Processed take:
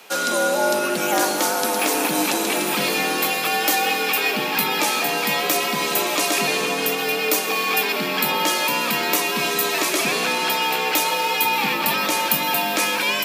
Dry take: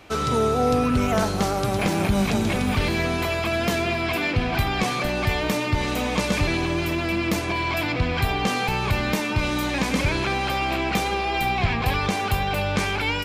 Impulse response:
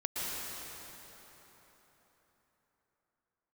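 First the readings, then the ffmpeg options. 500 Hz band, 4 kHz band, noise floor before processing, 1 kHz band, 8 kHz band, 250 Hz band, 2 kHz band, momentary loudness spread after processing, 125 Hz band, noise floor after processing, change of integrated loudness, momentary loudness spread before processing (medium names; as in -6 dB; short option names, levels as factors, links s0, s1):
+1.5 dB, +7.0 dB, -26 dBFS, +3.5 dB, +12.0 dB, -3.0 dB, +4.5 dB, 1 LU, -14.5 dB, -24 dBFS, +3.5 dB, 3 LU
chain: -filter_complex "[0:a]aemphasis=mode=production:type=bsi,afreqshift=110,asplit=2[s0][s1];[1:a]atrim=start_sample=2205[s2];[s1][s2]afir=irnorm=-1:irlink=0,volume=0.335[s3];[s0][s3]amix=inputs=2:normalize=0"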